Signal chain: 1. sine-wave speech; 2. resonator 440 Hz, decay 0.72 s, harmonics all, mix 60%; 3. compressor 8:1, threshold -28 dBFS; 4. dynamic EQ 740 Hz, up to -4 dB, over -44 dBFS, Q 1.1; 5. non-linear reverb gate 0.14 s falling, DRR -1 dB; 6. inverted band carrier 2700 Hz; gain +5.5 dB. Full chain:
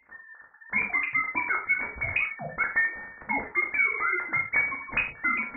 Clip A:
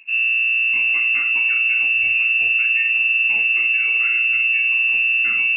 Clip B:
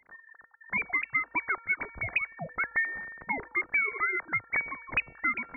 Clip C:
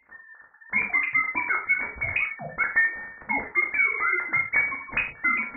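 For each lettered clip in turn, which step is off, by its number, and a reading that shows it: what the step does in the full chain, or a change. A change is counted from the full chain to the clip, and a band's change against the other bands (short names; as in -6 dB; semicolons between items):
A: 1, crest factor change -6.5 dB; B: 5, loudness change -3.5 LU; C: 4, 2 kHz band +2.0 dB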